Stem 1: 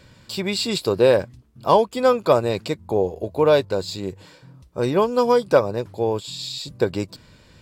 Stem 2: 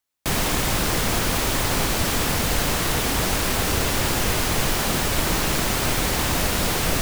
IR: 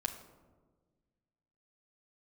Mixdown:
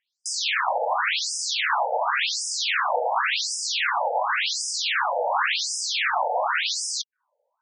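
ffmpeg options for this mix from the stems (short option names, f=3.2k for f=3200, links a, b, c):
-filter_complex "[0:a]lowpass=f=1.3k:w=0.5412,lowpass=f=1.3k:w=1.3066,volume=-11.5dB[a];[1:a]asplit=2[b][c];[c]highpass=f=720:p=1,volume=13dB,asoftclip=type=tanh:threshold=-7.5dB[d];[b][d]amix=inputs=2:normalize=0,lowpass=f=2.8k:p=1,volume=-6dB,volume=2dB,asplit=2[e][f];[f]volume=-11dB[g];[2:a]atrim=start_sample=2205[h];[g][h]afir=irnorm=-1:irlink=0[i];[a][e][i]amix=inputs=3:normalize=0,afftfilt=real='re*between(b*sr/1024,630*pow(7000/630,0.5+0.5*sin(2*PI*0.91*pts/sr))/1.41,630*pow(7000/630,0.5+0.5*sin(2*PI*0.91*pts/sr))*1.41)':imag='im*between(b*sr/1024,630*pow(7000/630,0.5+0.5*sin(2*PI*0.91*pts/sr))/1.41,630*pow(7000/630,0.5+0.5*sin(2*PI*0.91*pts/sr))*1.41)':win_size=1024:overlap=0.75"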